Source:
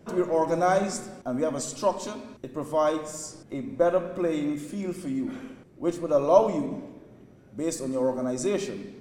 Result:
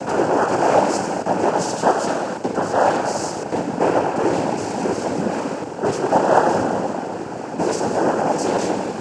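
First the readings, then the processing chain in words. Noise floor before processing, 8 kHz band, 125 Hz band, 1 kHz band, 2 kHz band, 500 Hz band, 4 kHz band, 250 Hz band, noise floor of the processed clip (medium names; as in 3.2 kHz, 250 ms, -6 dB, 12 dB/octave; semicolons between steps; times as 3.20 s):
-53 dBFS, +6.5 dB, +8.0 dB, +12.0 dB, +12.5 dB, +6.0 dB, +10.0 dB, +6.5 dB, -30 dBFS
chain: spectral levelling over time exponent 0.4; noise-vocoded speech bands 8; trim +1 dB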